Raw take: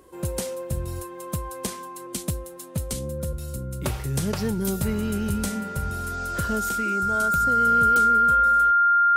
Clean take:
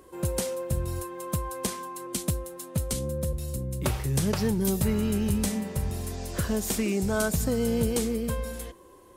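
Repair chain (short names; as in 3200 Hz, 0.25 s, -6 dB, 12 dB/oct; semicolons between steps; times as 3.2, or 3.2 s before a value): de-click; notch 1400 Hz, Q 30; gain correction +4.5 dB, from 6.69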